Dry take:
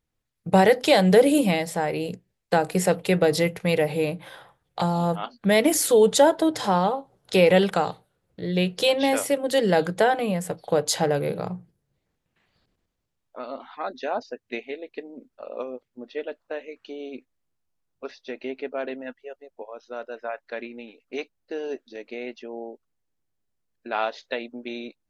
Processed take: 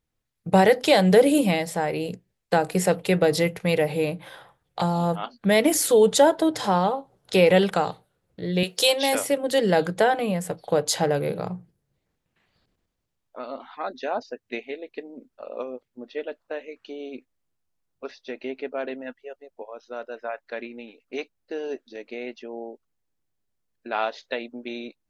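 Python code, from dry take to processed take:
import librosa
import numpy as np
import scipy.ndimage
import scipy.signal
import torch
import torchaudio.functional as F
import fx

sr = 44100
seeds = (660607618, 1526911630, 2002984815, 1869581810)

y = fx.bass_treble(x, sr, bass_db=-15, treble_db=11, at=(8.63, 9.15))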